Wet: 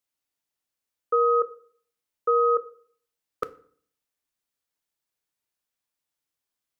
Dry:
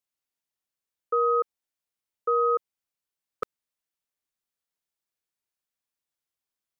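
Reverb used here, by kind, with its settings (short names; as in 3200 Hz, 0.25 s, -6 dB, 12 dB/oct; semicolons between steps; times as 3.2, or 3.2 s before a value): FDN reverb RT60 0.53 s, low-frequency decay 1.25×, high-frequency decay 0.75×, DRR 11.5 dB; gain +2.5 dB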